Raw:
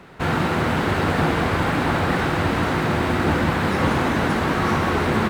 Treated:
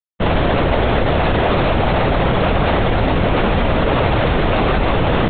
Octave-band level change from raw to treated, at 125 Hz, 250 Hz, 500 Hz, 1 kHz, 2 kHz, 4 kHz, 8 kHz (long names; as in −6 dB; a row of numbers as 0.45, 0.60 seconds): +5.0 dB, +2.0 dB, +7.0 dB, +3.5 dB, +1.5 dB, +5.5 dB, below −35 dB